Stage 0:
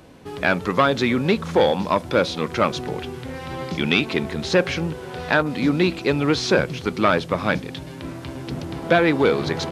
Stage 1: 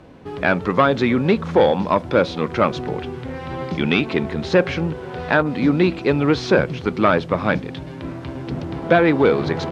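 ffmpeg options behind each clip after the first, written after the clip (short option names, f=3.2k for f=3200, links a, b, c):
-af "aemphasis=mode=reproduction:type=75fm,volume=2dB"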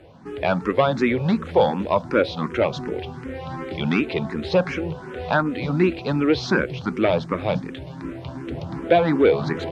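-filter_complex "[0:a]asplit=2[a][b];[b]afreqshift=2.7[c];[a][c]amix=inputs=2:normalize=1"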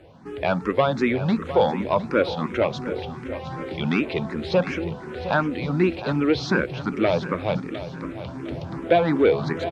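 -af "aecho=1:1:709|1418|2127|2836:0.224|0.0851|0.0323|0.0123,volume=-1.5dB"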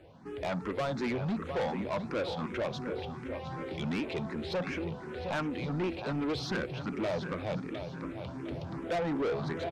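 -af "asoftclip=type=tanh:threshold=-22dB,volume=-6dB"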